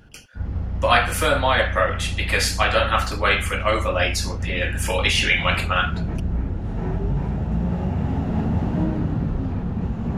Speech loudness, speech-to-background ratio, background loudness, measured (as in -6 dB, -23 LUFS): -21.0 LUFS, 5.5 dB, -26.5 LUFS